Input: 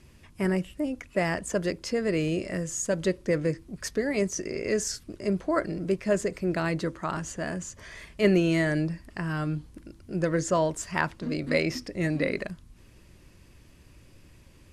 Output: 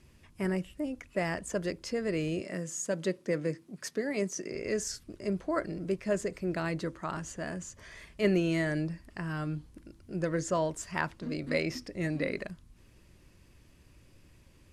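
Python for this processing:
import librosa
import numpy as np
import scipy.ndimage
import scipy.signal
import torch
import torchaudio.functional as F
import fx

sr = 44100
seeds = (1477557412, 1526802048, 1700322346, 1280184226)

y = fx.highpass(x, sr, hz=140.0, slope=24, at=(2.41, 4.52))
y = F.gain(torch.from_numpy(y), -5.0).numpy()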